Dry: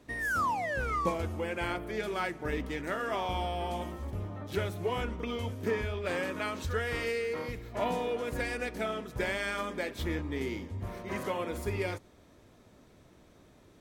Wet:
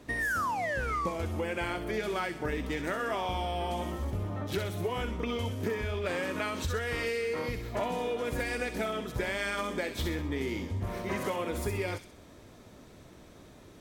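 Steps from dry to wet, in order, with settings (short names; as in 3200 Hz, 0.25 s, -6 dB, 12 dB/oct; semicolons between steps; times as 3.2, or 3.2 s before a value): compressor, threshold -35 dBFS, peak gain reduction 11 dB; on a send: thin delay 64 ms, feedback 44%, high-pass 3200 Hz, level -4.5 dB; on the sum: gain +6 dB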